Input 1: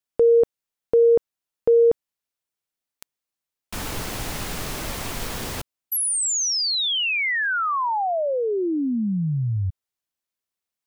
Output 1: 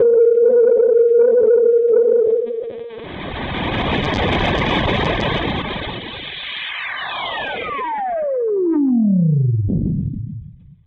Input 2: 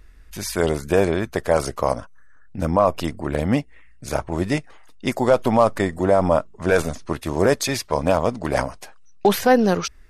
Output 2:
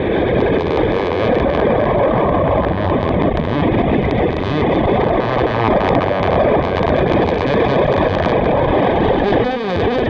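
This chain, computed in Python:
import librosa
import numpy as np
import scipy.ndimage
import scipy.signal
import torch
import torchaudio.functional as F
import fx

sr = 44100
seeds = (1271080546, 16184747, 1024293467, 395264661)

p1 = fx.spec_blur(x, sr, span_ms=1210.0)
p2 = fx.dynamic_eq(p1, sr, hz=1400.0, q=5.7, threshold_db=-50.0, ratio=5.0, max_db=-4)
p3 = fx.lpc_vocoder(p2, sr, seeds[0], excitation='pitch_kept', order=16)
p4 = fx.over_compress(p3, sr, threshold_db=-31.0, ratio=-1.0)
p5 = p3 + F.gain(torch.from_numpy(p4), -2.0).numpy()
p6 = fx.low_shelf(p5, sr, hz=130.0, db=4.0)
p7 = p6 + fx.echo_single(p6, sr, ms=131, db=-9.5, dry=0)
p8 = fx.dereverb_blind(p7, sr, rt60_s=0.96)
p9 = fx.fold_sine(p8, sr, drive_db=11, ceiling_db=-7.5)
p10 = fx.notch_comb(p9, sr, f0_hz=1400.0)
y = fx.pre_swell(p10, sr, db_per_s=28.0)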